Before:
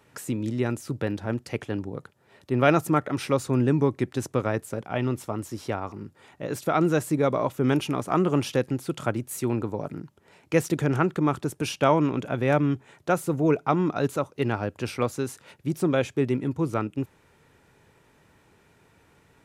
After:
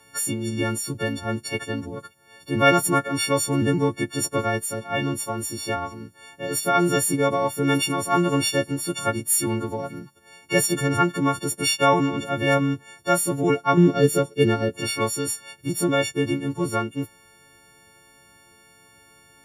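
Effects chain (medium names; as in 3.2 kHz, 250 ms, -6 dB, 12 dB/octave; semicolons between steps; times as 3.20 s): partials quantised in pitch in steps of 4 st; 13.77–14.81 s: fifteen-band graphic EQ 160 Hz +10 dB, 400 Hz +10 dB, 1 kHz -9 dB; trim +1 dB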